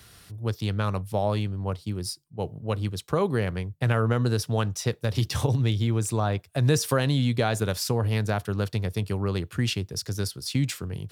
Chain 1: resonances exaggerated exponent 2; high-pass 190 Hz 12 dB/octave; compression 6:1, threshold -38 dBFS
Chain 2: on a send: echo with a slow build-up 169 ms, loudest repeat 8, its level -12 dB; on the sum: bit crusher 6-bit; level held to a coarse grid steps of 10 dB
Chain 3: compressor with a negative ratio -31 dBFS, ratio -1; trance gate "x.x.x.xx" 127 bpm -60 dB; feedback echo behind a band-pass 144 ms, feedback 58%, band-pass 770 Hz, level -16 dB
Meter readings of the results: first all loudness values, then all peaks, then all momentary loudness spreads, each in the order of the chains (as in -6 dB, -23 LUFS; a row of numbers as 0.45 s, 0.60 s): -42.0 LUFS, -29.5 LUFS, -33.5 LUFS; -25.0 dBFS, -9.5 dBFS, -10.0 dBFS; 4 LU, 7 LU, 8 LU